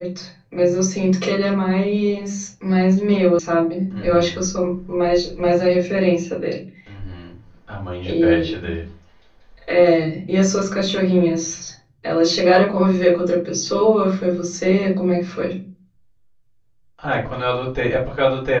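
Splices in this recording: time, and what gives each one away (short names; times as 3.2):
3.39 sound cut off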